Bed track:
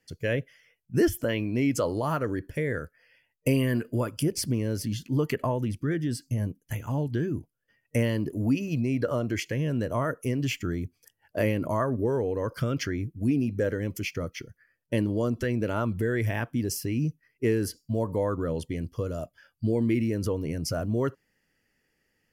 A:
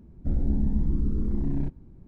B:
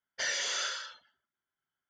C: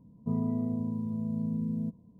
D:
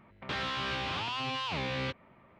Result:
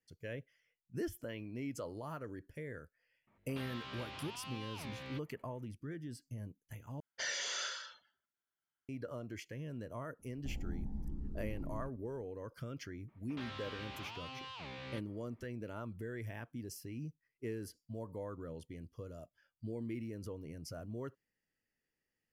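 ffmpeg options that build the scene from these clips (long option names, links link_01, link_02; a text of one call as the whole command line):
ffmpeg -i bed.wav -i cue0.wav -i cue1.wav -i cue2.wav -i cue3.wav -filter_complex "[4:a]asplit=2[link_01][link_02];[0:a]volume=-16.5dB[link_03];[1:a]equalizer=frequency=800:width_type=o:width=0.27:gain=10.5[link_04];[link_03]asplit=2[link_05][link_06];[link_05]atrim=end=7.004[link_07];[2:a]atrim=end=1.89,asetpts=PTS-STARTPTS,volume=-6dB[link_08];[link_06]atrim=start=8.886[link_09];[link_01]atrim=end=2.39,asetpts=PTS-STARTPTS,volume=-13.5dB,afade=type=in:duration=0.004:curve=hsin,afade=type=out:start_time=2.386:duration=0.004:curve=hsin,adelay=3270[link_10];[link_04]atrim=end=2.07,asetpts=PTS-STARTPTS,volume=-17dB,afade=type=in:duration=0.004:curve=hsin,afade=type=out:start_time=2.066:duration=0.004:curve=hsin,adelay=10190[link_11];[link_02]atrim=end=2.39,asetpts=PTS-STARTPTS,volume=-13dB,afade=type=in:duration=0.004:curve=hsin,afade=type=out:start_time=2.386:duration=0.004:curve=hsin,adelay=13080[link_12];[link_07][link_08]acrossfade=duration=0.004:curve1=hsin:curve2=hsin[link_13];[link_13][link_09]acrossfade=duration=0.004:curve1=hsin:curve2=hsin[link_14];[link_14][link_10][link_11][link_12]amix=inputs=4:normalize=0" out.wav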